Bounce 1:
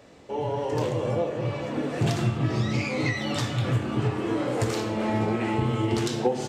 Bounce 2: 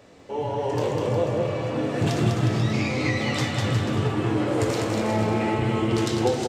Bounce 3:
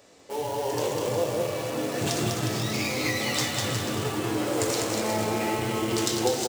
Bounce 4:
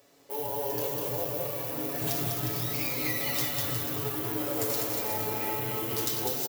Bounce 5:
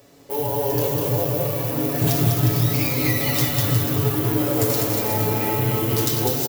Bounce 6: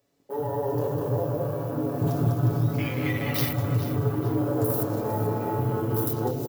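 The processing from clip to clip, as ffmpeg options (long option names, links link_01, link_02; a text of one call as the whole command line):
ffmpeg -i in.wav -filter_complex "[0:a]flanger=delay=9.6:depth=1.8:regen=70:speed=1.6:shape=sinusoidal,asplit=2[link_01][link_02];[link_02]aecho=0:1:200|360|488|590.4|672.3:0.631|0.398|0.251|0.158|0.1[link_03];[link_01][link_03]amix=inputs=2:normalize=0,volume=5dB" out.wav
ffmpeg -i in.wav -filter_complex "[0:a]asplit=2[link_01][link_02];[link_02]acrusher=bits=4:mix=0:aa=0.000001,volume=-11dB[link_03];[link_01][link_03]amix=inputs=2:normalize=0,bass=frequency=250:gain=-7,treble=frequency=4000:gain=10,volume=-4dB" out.wav
ffmpeg -i in.wav -af "aecho=1:1:7.1:0.65,aexciter=amount=8.8:drive=3:freq=11000,volume=-8dB" out.wav
ffmpeg -i in.wav -af "lowshelf=frequency=260:gain=12,volume=7dB" out.wav
ffmpeg -i in.wav -af "afwtdn=0.0355,aecho=1:1:436|872|1308:0.211|0.0697|0.023,volume=-4dB" out.wav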